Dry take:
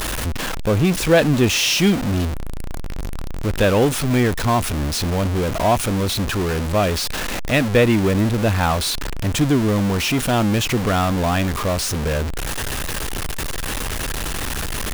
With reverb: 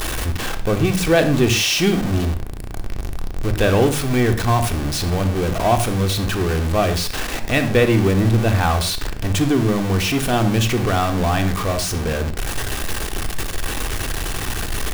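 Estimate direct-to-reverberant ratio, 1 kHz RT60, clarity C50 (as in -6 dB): 6.5 dB, no reading, 11.0 dB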